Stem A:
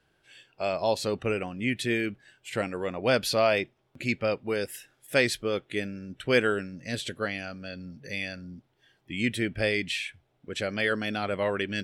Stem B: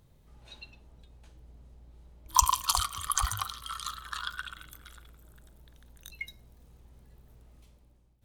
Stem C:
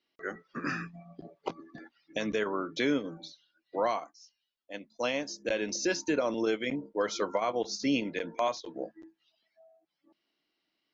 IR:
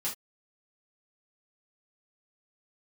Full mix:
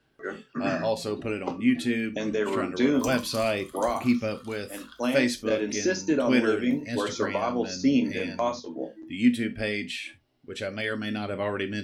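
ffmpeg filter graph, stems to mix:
-filter_complex "[0:a]aphaser=in_gain=1:out_gain=1:delay=4.3:decay=0.29:speed=0.26:type=sinusoidal,volume=0.531,asplit=2[s0][s1];[s1]volume=0.355[s2];[1:a]adelay=650,volume=0.126,asplit=2[s3][s4];[s4]volume=0.668[s5];[2:a]equalizer=f=2900:t=o:w=1.5:g=-5,volume=0.944,asplit=2[s6][s7];[s7]volume=0.531[s8];[3:a]atrim=start_sample=2205[s9];[s2][s5][s8]amix=inputs=3:normalize=0[s10];[s10][s9]afir=irnorm=-1:irlink=0[s11];[s0][s3][s6][s11]amix=inputs=4:normalize=0,equalizer=f=240:t=o:w=0.36:g=10"

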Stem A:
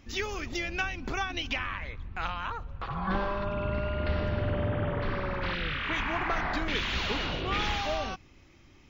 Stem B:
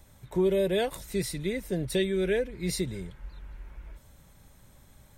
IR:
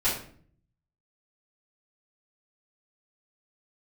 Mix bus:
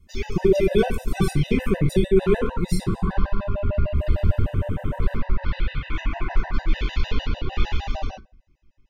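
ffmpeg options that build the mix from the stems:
-filter_complex "[0:a]lowshelf=f=200:g=11,volume=0.668,asplit=2[s0][s1];[s1]volume=0.355[s2];[1:a]equalizer=f=120:w=0.31:g=13.5,volume=0.944,asplit=3[s3][s4][s5];[s4]volume=0.224[s6];[s5]apad=whole_len=392372[s7];[s0][s7]sidechaingate=range=0.398:threshold=0.00224:ratio=16:detection=peak[s8];[2:a]atrim=start_sample=2205[s9];[s2][s6]amix=inputs=2:normalize=0[s10];[s10][s9]afir=irnorm=-1:irlink=0[s11];[s8][s3][s11]amix=inputs=3:normalize=0,agate=range=0.224:threshold=0.0562:ratio=16:detection=peak,afftfilt=real='re*gt(sin(2*PI*6.6*pts/sr)*(1-2*mod(floor(b*sr/1024/510),2)),0)':imag='im*gt(sin(2*PI*6.6*pts/sr)*(1-2*mod(floor(b*sr/1024/510),2)),0)':win_size=1024:overlap=0.75"

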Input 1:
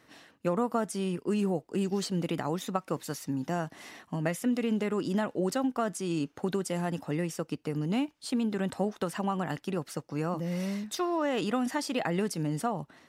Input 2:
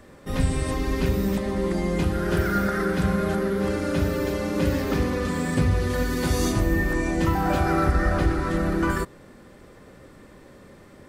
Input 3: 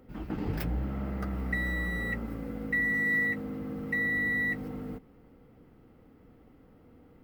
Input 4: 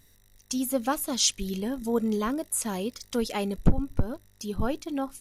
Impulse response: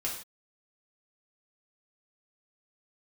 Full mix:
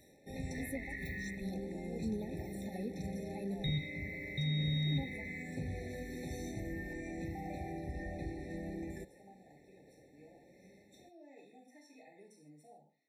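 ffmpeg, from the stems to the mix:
-filter_complex "[0:a]lowshelf=f=250:g=-7.5,volume=0.188,asplit=2[s0][s1];[s1]volume=0.2[s2];[1:a]volume=0.188,asplit=2[s3][s4];[s4]volume=0.0944[s5];[2:a]aeval=exprs='val(0)*sin(2*PI*1800*n/s)':c=same,adelay=450,volume=1.06,asplit=3[s6][s7][s8];[s6]atrim=end=1.35,asetpts=PTS-STARTPTS,afade=t=out:st=1.346:d=0.004:c=hsin[s9];[s7]atrim=start=1.35:end=3.64,asetpts=PTS-STARTPTS,volume=0[s10];[s8]atrim=start=3.64,asetpts=PTS-STARTPTS,afade=t=in:d=0.004:c=hsin[s11];[s9][s10][s11]concat=n=3:v=0:a=1,asplit=2[s12][s13];[s13]volume=0.562[s14];[3:a]asoftclip=type=tanh:threshold=0.15,aeval=exprs='val(0)*pow(10,-21*(0.5-0.5*cos(2*PI*1.4*n/s))/20)':c=same,volume=0.75,asplit=2[s15][s16];[s16]apad=whole_len=577027[s17];[s0][s17]sidechaingate=range=0.00158:threshold=0.00251:ratio=16:detection=peak[s18];[4:a]atrim=start_sample=2205[s19];[s2][s5][s14]amix=inputs=3:normalize=0[s20];[s20][s19]afir=irnorm=-1:irlink=0[s21];[s18][s3][s12][s15][s21]amix=inputs=5:normalize=0,highpass=f=140:p=1,acrossover=split=200[s22][s23];[s23]acompressor=threshold=0.00794:ratio=4[s24];[s22][s24]amix=inputs=2:normalize=0,afftfilt=real='re*eq(mod(floor(b*sr/1024/880),2),0)':imag='im*eq(mod(floor(b*sr/1024/880),2),0)':win_size=1024:overlap=0.75"

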